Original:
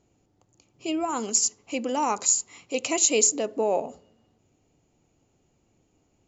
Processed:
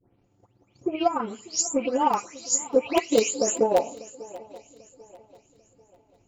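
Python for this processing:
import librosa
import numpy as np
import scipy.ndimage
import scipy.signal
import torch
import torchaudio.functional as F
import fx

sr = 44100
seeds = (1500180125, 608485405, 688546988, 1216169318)

p1 = fx.spec_delay(x, sr, highs='late', ms=283)
p2 = fx.high_shelf(p1, sr, hz=2900.0, db=-9.5)
p3 = fx.notch_comb(p2, sr, f0_hz=160.0)
p4 = (np.mod(10.0 ** (17.5 / 20.0) * p3 + 1.0, 2.0) - 1.0) / 10.0 ** (17.5 / 20.0)
p5 = p3 + (p4 * librosa.db_to_amplitude(-7.0))
p6 = fx.transient(p5, sr, attack_db=9, sustain_db=-3)
y = p6 + fx.echo_swing(p6, sr, ms=792, ratio=3, feedback_pct=34, wet_db=-20, dry=0)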